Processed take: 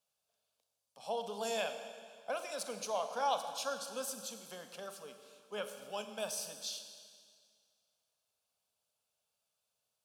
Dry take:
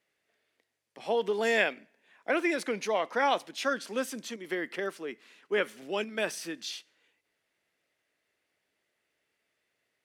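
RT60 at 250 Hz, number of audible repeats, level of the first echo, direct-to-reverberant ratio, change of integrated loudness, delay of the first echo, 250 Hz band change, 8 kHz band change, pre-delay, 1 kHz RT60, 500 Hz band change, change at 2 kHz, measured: 1.9 s, no echo audible, no echo audible, 7.5 dB, −8.5 dB, no echo audible, −15.5 dB, +1.0 dB, 32 ms, 2.0 s, −9.0 dB, −15.5 dB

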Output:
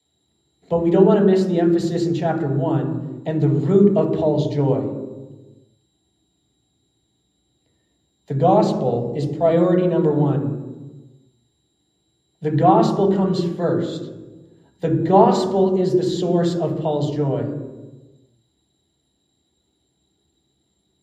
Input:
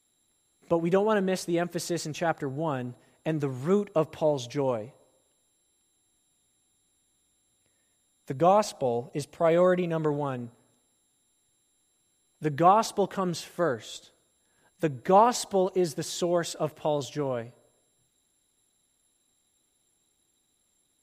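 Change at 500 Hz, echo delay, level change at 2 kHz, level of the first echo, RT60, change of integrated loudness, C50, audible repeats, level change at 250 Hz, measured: +8.0 dB, no echo audible, −0.5 dB, no echo audible, 1.3 s, +8.5 dB, 5.0 dB, no echo audible, +12.0 dB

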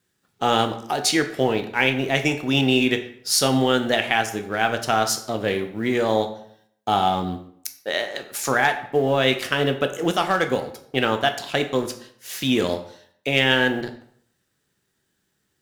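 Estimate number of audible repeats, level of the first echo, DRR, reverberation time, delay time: no echo audible, no echo audible, 6.5 dB, 0.65 s, no echo audible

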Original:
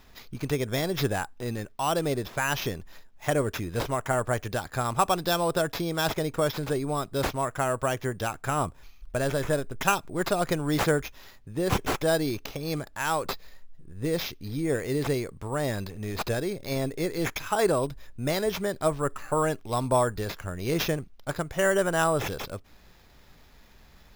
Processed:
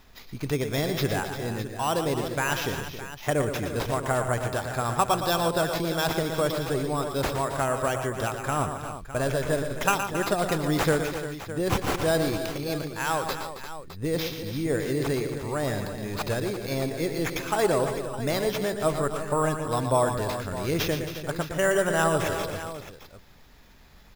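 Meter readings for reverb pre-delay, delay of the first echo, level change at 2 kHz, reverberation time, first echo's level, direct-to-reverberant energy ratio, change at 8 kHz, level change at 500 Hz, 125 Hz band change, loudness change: no reverb audible, 117 ms, +1.5 dB, no reverb audible, −8.5 dB, no reverb audible, +1.5 dB, +1.5 dB, +1.5 dB, +1.0 dB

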